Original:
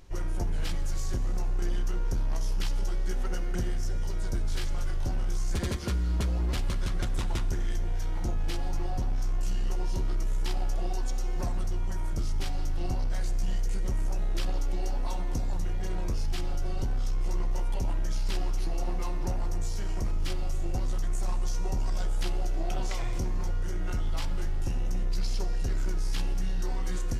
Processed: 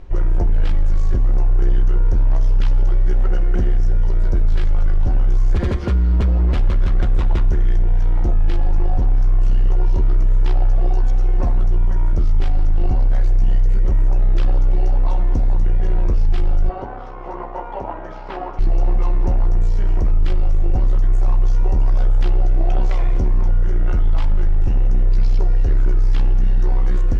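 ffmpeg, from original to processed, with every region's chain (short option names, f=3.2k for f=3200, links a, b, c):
-filter_complex "[0:a]asettb=1/sr,asplit=3[a][b][c];[a]atrim=end=16.694[d];[b]atrim=start=16.69:end=18.59,asetpts=PTS-STARTPTS,afade=t=in:d=0.004:c=qsin,afade=t=out:st=1.896:d=0.004:c=qsin,acontrast=71,bandpass=f=890:t=q:w=1.3[e];[c]atrim=start=18.586[f];[d][e]acrossfade=d=0.004:c1=hsin:c2=qsin[g];[g][f]acrossfade=d=0.004:c1=qsin:c2=hsin,aemphasis=mode=reproduction:type=riaa,acontrast=33,bass=f=250:g=-12,treble=f=4k:g=-6,volume=4.5dB"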